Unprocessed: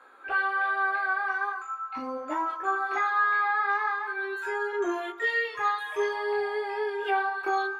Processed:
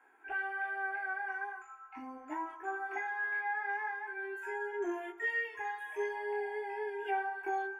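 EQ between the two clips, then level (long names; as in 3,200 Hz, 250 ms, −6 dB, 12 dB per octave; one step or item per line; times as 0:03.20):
phaser with its sweep stopped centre 820 Hz, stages 8
−6.5 dB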